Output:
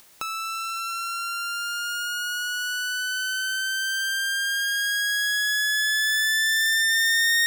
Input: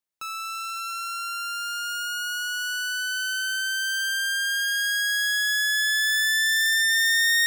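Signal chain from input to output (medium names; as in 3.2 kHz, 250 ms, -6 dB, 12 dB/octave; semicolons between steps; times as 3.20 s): hum notches 60/120/180/240/300 Hz; upward compressor, threshold -26 dBFS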